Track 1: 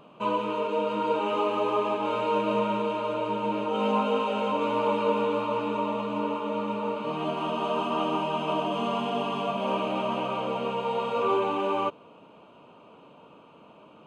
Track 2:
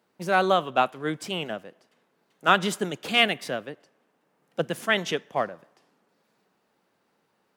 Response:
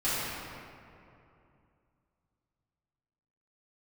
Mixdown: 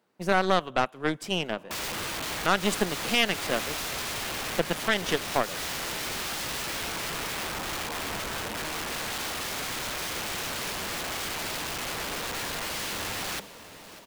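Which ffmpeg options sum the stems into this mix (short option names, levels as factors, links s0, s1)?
-filter_complex "[0:a]equalizer=f=1300:t=o:w=0.27:g=-12.5,bandreject=f=50:t=h:w=6,bandreject=f=100:t=h:w=6,bandreject=f=150:t=h:w=6,bandreject=f=200:t=h:w=6,bandreject=f=250:t=h:w=6,aeval=exprs='(mod(26.6*val(0)+1,2)-1)/26.6':c=same,adelay=1500,volume=1,asplit=2[s0][s1];[s1]volume=0.15[s2];[1:a]acontrast=34,aeval=exprs='0.891*(cos(1*acos(clip(val(0)/0.891,-1,1)))-cos(1*PI/2))+0.126*(cos(4*acos(clip(val(0)/0.891,-1,1)))-cos(4*PI/2))+0.00708*(cos(5*acos(clip(val(0)/0.891,-1,1)))-cos(5*PI/2))+0.0891*(cos(7*acos(clip(val(0)/0.891,-1,1)))-cos(7*PI/2))':c=same,volume=1.33[s3];[s2]aecho=0:1:596|1192|1788|2384|2980|3576|4172|4768|5364:1|0.57|0.325|0.185|0.106|0.0602|0.0343|0.0195|0.0111[s4];[s0][s3][s4]amix=inputs=3:normalize=0,alimiter=limit=0.335:level=0:latency=1:release=204"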